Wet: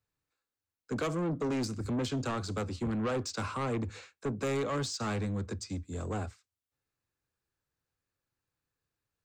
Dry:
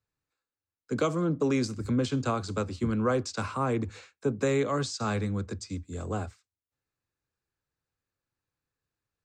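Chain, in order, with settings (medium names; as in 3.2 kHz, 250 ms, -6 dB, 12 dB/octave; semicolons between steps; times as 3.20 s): saturation -28 dBFS, distortion -10 dB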